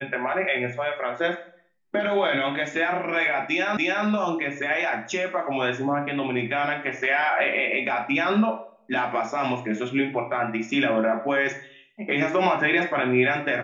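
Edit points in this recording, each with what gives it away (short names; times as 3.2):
3.77 repeat of the last 0.29 s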